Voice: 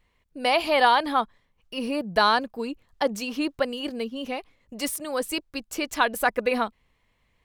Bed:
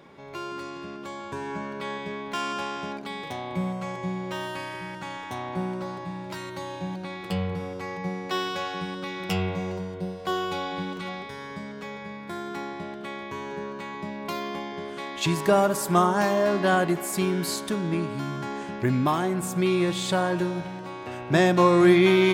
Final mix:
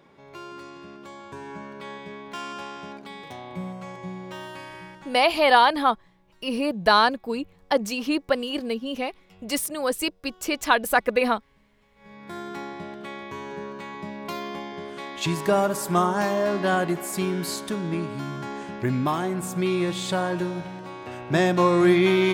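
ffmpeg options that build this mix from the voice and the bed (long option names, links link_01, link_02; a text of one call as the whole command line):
ffmpeg -i stem1.wav -i stem2.wav -filter_complex "[0:a]adelay=4700,volume=2.5dB[link_01];[1:a]volume=22dB,afade=type=out:start_time=4.81:duration=0.48:silence=0.0707946,afade=type=in:start_time=11.95:duration=0.43:silence=0.0446684[link_02];[link_01][link_02]amix=inputs=2:normalize=0" out.wav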